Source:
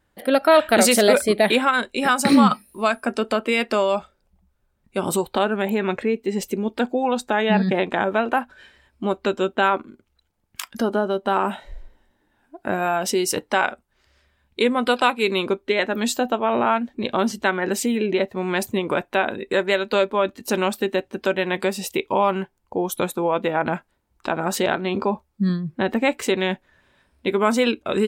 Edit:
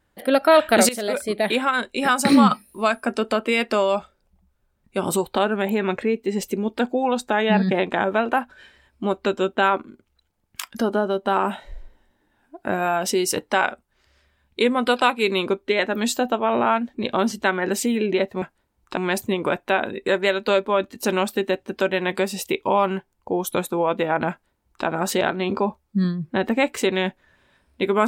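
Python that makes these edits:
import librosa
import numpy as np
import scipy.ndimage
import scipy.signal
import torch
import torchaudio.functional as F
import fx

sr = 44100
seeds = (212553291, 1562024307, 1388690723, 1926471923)

y = fx.edit(x, sr, fx.fade_in_from(start_s=0.89, length_s=1.54, curve='qsin', floor_db=-15.5),
    fx.duplicate(start_s=23.75, length_s=0.55, to_s=18.42), tone=tone)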